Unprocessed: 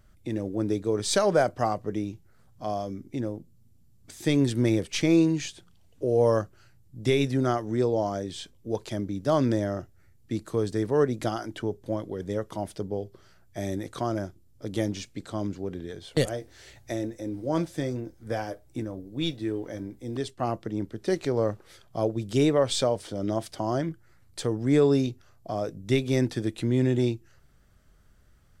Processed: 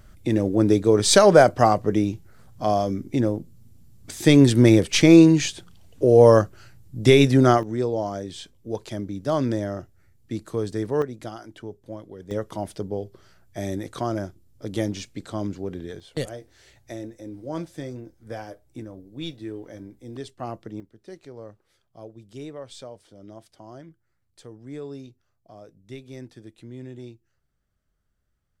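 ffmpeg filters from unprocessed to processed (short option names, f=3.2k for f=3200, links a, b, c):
-af "asetnsamples=n=441:p=0,asendcmd='7.63 volume volume 0dB;11.02 volume volume -7dB;12.31 volume volume 2dB;16 volume volume -4.5dB;20.8 volume volume -15.5dB',volume=9dB"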